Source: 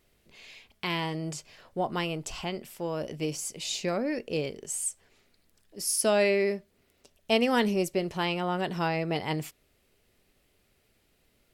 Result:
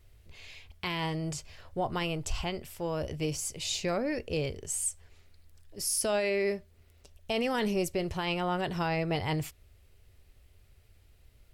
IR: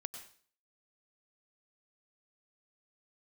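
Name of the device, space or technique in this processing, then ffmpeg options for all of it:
car stereo with a boomy subwoofer: -af "lowshelf=frequency=130:width_type=q:width=1.5:gain=13.5,alimiter=limit=-21.5dB:level=0:latency=1:release=11"

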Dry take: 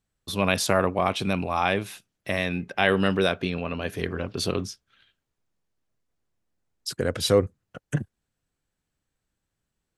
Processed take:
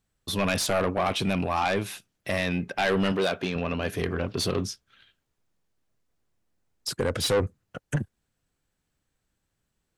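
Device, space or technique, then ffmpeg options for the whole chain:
saturation between pre-emphasis and de-emphasis: -filter_complex "[0:a]highshelf=frequency=8700:gain=12,asoftclip=type=tanh:threshold=-21.5dB,highshelf=frequency=8700:gain=-12,asettb=1/sr,asplit=3[link_01][link_02][link_03];[link_01]atrim=end=3.124[link_04];[link_02]atrim=start=3.12:end=3.56,asetpts=PTS-STARTPTS,afade=type=in:duration=0.004:curve=qsin,afade=type=out:start_time=0.436:duration=0.004:curve=qsin,highpass=frequency=200:poles=1[link_05];[link_03]atrim=start=3.556[link_06];[link_04][link_05]acrossfade=duration=0.004:curve1=hsin:curve2=qsin[link_07];[link_07][link_06]acrossfade=duration=0.004:curve1=qsin:curve2=hsin,volume=3dB"

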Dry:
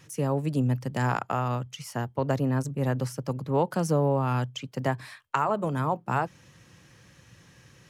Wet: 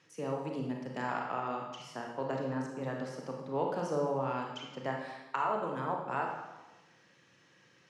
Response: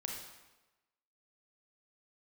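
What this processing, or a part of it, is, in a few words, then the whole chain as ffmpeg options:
supermarket ceiling speaker: -filter_complex "[0:a]asettb=1/sr,asplit=3[link_01][link_02][link_03];[link_01]atrim=end=1.064[link_04];[link_02]atrim=start=1.06:end=1.47,asetpts=PTS-STARTPTS,afade=type=in:duration=0.004:curve=qsin,afade=type=out:start_time=0.406:duration=0.004:curve=qsin,lowpass=5700[link_05];[link_03]atrim=start=1.466[link_06];[link_04][link_05]acrossfade=duration=0.004:curve1=hsin:curve2=qsin[link_07];[link_07][link_06]acrossfade=duration=0.004:curve1=qsin:curve2=hsin,highpass=250,lowpass=5300[link_08];[1:a]atrim=start_sample=2205[link_09];[link_08][link_09]afir=irnorm=-1:irlink=0,volume=-5.5dB"

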